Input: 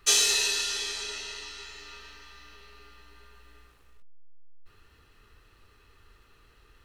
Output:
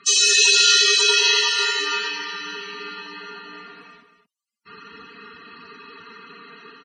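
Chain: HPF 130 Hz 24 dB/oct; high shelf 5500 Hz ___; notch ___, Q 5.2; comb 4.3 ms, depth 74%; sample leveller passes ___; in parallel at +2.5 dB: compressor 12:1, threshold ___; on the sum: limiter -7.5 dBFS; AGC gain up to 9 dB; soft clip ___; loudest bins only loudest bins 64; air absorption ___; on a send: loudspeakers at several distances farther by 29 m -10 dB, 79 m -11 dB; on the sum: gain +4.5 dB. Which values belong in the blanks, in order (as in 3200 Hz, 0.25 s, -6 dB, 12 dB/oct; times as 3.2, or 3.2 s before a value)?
+4 dB, 510 Hz, 1, -29 dBFS, -8.5 dBFS, 65 m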